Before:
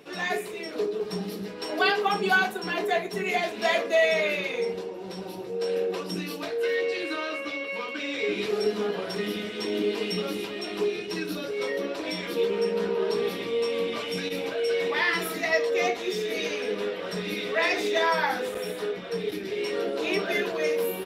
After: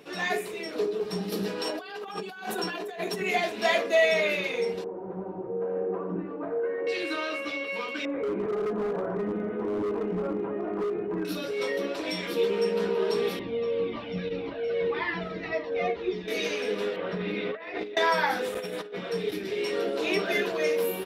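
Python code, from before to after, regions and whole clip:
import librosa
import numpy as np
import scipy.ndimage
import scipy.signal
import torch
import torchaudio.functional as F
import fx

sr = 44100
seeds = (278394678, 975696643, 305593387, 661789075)

y = fx.chain(x, sr, fx.highpass(hz=160.0, slope=6),
    fx.notch(hz=2100.0, q=12.0),
    fx.over_compress(threshold_db=-35.0, ratio=-1.0), at=(1.32, 3.21))
y = fx.chain(y, sr, fx.lowpass(hz=1300.0, slope=24),
    fx.echo_single(ms=91, db=-7.0), at=(4.84, 6.87))
y = fx.chain(y, sr, fx.lowpass(hz=1300.0, slope=24),
    fx.overload_stage(gain_db=26.5),
    fx.env_flatten(amount_pct=50), at=(8.05, 11.25))
y = fx.chain(y, sr, fx.lowpass(hz=4600.0, slope=24),
    fx.tilt_eq(slope=-3.0),
    fx.comb_cascade(direction='falling', hz=1.8), at=(13.39, 16.28))
y = fx.chain(y, sr, fx.air_absorb(metres=370.0),
    fx.over_compress(threshold_db=-32.0, ratio=-0.5), at=(16.96, 17.97))
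y = fx.chain(y, sr, fx.highpass(hz=85.0, slope=12),
    fx.high_shelf(hz=6600.0, db=-7.5),
    fx.over_compress(threshold_db=-34.0, ratio=-0.5), at=(18.58, 19.12))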